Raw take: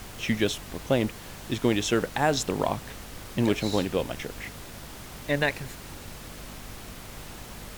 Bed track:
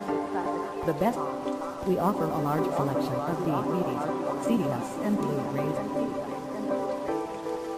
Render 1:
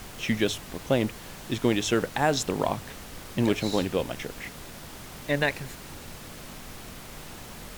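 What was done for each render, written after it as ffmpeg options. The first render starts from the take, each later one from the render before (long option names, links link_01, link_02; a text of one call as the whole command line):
ffmpeg -i in.wav -af "bandreject=frequency=50:width_type=h:width=4,bandreject=frequency=100:width_type=h:width=4" out.wav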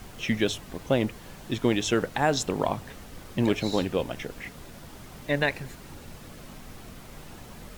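ffmpeg -i in.wav -af "afftdn=noise_reduction=6:noise_floor=-43" out.wav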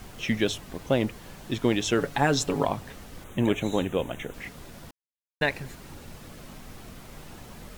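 ffmpeg -i in.wav -filter_complex "[0:a]asettb=1/sr,asplit=3[link_01][link_02][link_03];[link_01]atrim=end=1.984[link_04];[link_02]atrim=start=1.98:end=2.65,asetpts=PTS-STARTPTS,afade=type=in:duration=0.004:curve=qsin,afade=type=out:start_time=0.666:duration=0.004:curve=qsin,aecho=1:1:7.1:0.63,atrim=end_sample=29547[link_05];[link_03]atrim=start=2.646[link_06];[link_04][link_05]acrossfade=duration=0.004:curve1=hsin:curve2=qsin[link_07];[link_07][link_06]acrossfade=duration=0.004:curve1=qsin:curve2=hsin,asettb=1/sr,asplit=3[link_08][link_09][link_10];[link_08]atrim=end=3.244[link_11];[link_09]atrim=start=3.24:end=4.34,asetpts=PTS-STARTPTS,afade=type=in:duration=0.004:curve=qsin,afade=type=out:start_time=1.096:duration=0.004:curve=qsin,asuperstop=centerf=4800:order=8:qfactor=2.1[link_12];[link_10]atrim=start=4.336[link_13];[link_11][link_12]acrossfade=duration=0.004:curve1=hsin:curve2=qsin[link_14];[link_14][link_13]acrossfade=duration=0.004:curve1=qsin:curve2=hsin,asplit=3[link_15][link_16][link_17];[link_15]atrim=end=4.91,asetpts=PTS-STARTPTS,afade=type=out:start_time=4.906:duration=0.004:curve=hsin[link_18];[link_16]atrim=start=4.91:end=5.41,asetpts=PTS-STARTPTS,volume=0[link_19];[link_17]atrim=start=5.41,asetpts=PTS-STARTPTS,afade=type=in:duration=0.004:curve=hsin[link_20];[link_18][link_19][link_20]concat=n=3:v=0:a=1" out.wav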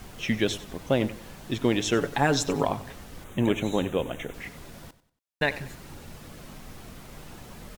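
ffmpeg -i in.wav -af "aecho=1:1:94|188|282:0.15|0.0509|0.0173" out.wav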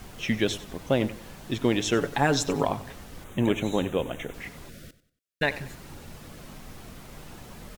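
ffmpeg -i in.wav -filter_complex "[0:a]asettb=1/sr,asplit=3[link_01][link_02][link_03];[link_01]atrim=end=4.694[link_04];[link_02]atrim=start=4.69:end=5.43,asetpts=PTS-STARTPTS,afade=type=in:duration=0.004:curve=qsin,afade=type=out:start_time=0.736:duration=0.004:curve=qsin,asuperstop=centerf=900:order=4:qfactor=1.2[link_05];[link_03]atrim=start=5.426[link_06];[link_04][link_05]acrossfade=duration=0.004:curve1=hsin:curve2=qsin[link_07];[link_07][link_06]acrossfade=duration=0.004:curve1=qsin:curve2=hsin" out.wav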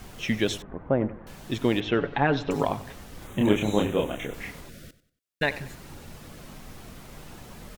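ffmpeg -i in.wav -filter_complex "[0:a]asettb=1/sr,asplit=3[link_01][link_02][link_03];[link_01]atrim=end=0.624[link_04];[link_02]atrim=start=0.62:end=1.27,asetpts=PTS-STARTPTS,afade=type=in:duration=0.004:curve=qsin,afade=type=out:start_time=0.646:duration=0.004:curve=qsin,lowpass=frequency=1600:width=0.5412,lowpass=frequency=1600:width=1.3066[link_05];[link_03]atrim=start=1.266[link_06];[link_04][link_05]acrossfade=duration=0.004:curve1=hsin:curve2=qsin[link_07];[link_07][link_06]acrossfade=duration=0.004:curve1=qsin:curve2=hsin,asettb=1/sr,asplit=3[link_08][link_09][link_10];[link_08]atrim=end=1.804[link_11];[link_09]atrim=start=1.8:end=2.51,asetpts=PTS-STARTPTS,afade=type=in:duration=0.004:curve=qsin,afade=type=out:start_time=0.706:duration=0.004:curve=qsin,lowpass=frequency=3400:width=0.5412,lowpass=frequency=3400:width=1.3066[link_12];[link_10]atrim=start=2.506[link_13];[link_11][link_12]acrossfade=duration=0.004:curve1=hsin:curve2=qsin[link_14];[link_14][link_13]acrossfade=duration=0.004:curve1=qsin:curve2=hsin,asettb=1/sr,asplit=3[link_15][link_16][link_17];[link_15]atrim=end=3.194[link_18];[link_16]atrim=start=3.19:end=4.61,asetpts=PTS-STARTPTS,afade=type=in:duration=0.004:curve=qsin,afade=type=out:start_time=1.416:duration=0.004:curve=qsin,asplit=2[link_19][link_20];[link_20]adelay=29,volume=-2dB[link_21];[link_19][link_21]amix=inputs=2:normalize=0,atrim=end_sample=62622[link_22];[link_17]atrim=start=4.606[link_23];[link_18][link_22]acrossfade=duration=0.004:curve1=hsin:curve2=qsin[link_24];[link_24][link_23]acrossfade=duration=0.004:curve1=qsin:curve2=hsin" out.wav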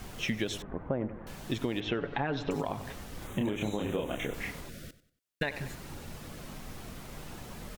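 ffmpeg -i in.wav -af "alimiter=limit=-14.5dB:level=0:latency=1:release=134,acompressor=threshold=-28dB:ratio=6" out.wav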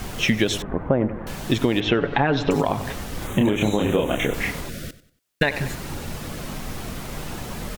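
ffmpeg -i in.wav -af "volume=12dB" out.wav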